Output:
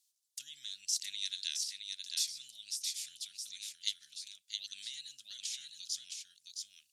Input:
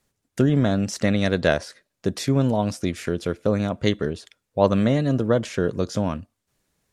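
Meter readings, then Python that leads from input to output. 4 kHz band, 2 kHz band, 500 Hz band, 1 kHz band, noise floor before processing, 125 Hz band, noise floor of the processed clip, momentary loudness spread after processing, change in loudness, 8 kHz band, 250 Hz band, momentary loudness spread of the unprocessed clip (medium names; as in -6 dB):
-1.5 dB, -21.5 dB, under -40 dB, under -40 dB, -79 dBFS, under -40 dB, -79 dBFS, 12 LU, -16.0 dB, +1.5 dB, under -40 dB, 10 LU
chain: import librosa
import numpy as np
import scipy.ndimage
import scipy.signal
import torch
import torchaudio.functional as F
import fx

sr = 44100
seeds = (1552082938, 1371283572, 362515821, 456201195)

y = scipy.signal.sosfilt(scipy.signal.cheby2(4, 60, 1100.0, 'highpass', fs=sr, output='sos'), x)
y = y + 10.0 ** (-4.5 / 20.0) * np.pad(y, (int(667 * sr / 1000.0), 0))[:len(y)]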